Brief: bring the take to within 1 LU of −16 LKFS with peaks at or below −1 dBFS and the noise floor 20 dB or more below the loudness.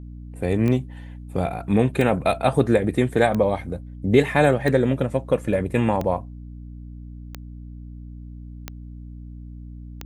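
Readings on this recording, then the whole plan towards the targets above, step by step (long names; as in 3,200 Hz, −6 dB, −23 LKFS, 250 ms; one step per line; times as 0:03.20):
number of clicks 8; mains hum 60 Hz; hum harmonics up to 300 Hz; level of the hum −36 dBFS; integrated loudness −21.5 LKFS; sample peak −3.5 dBFS; target loudness −16.0 LKFS
→ click removal
hum removal 60 Hz, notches 5
level +5.5 dB
brickwall limiter −1 dBFS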